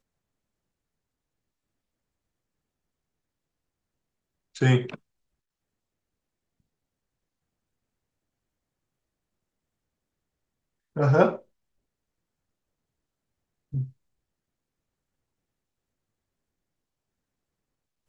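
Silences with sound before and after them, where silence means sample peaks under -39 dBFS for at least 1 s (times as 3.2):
4.96–10.96
11.36–13.73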